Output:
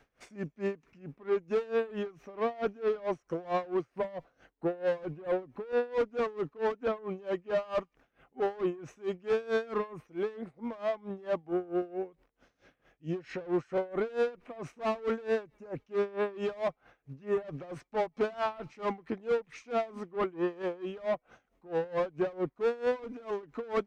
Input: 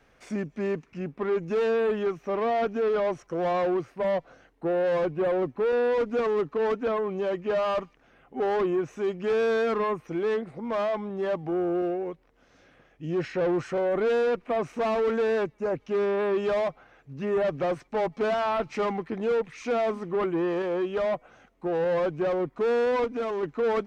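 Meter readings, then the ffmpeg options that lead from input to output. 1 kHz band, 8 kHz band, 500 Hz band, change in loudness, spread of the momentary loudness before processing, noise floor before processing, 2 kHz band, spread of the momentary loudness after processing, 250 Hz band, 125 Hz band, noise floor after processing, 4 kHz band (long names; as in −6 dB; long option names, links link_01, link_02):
−7.0 dB, can't be measured, −6.5 dB, −6.5 dB, 6 LU, −62 dBFS, −6.5 dB, 8 LU, −6.5 dB, −6.5 dB, −77 dBFS, −7.0 dB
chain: -af "aeval=exprs='val(0)*pow(10,-22*(0.5-0.5*cos(2*PI*4.5*n/s))/20)':channel_layout=same,volume=-1dB"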